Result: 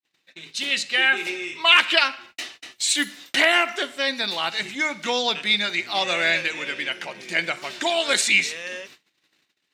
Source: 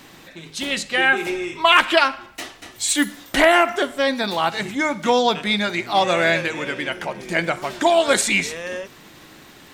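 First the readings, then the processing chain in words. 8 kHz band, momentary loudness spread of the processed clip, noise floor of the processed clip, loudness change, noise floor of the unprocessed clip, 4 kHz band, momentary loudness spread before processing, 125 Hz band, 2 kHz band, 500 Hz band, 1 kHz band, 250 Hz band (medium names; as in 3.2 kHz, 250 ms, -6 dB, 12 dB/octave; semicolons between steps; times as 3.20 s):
-2.0 dB, 13 LU, -74 dBFS, -1.5 dB, -46 dBFS, +2.0 dB, 15 LU, -11.5 dB, -0.5 dB, -8.5 dB, -7.5 dB, -9.5 dB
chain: band-stop 3.3 kHz, Q 16; gate -41 dBFS, range -55 dB; frequency weighting D; trim -8 dB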